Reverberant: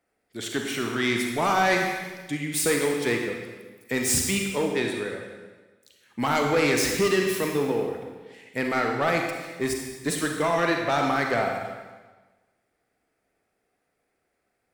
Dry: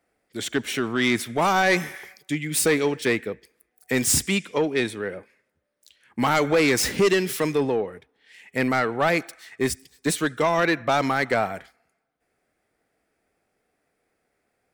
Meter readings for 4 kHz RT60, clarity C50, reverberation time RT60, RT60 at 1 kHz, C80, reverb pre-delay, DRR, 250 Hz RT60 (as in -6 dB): 1.2 s, 3.0 dB, 1.3 s, 1.3 s, 5.0 dB, 30 ms, 1.5 dB, 1.3 s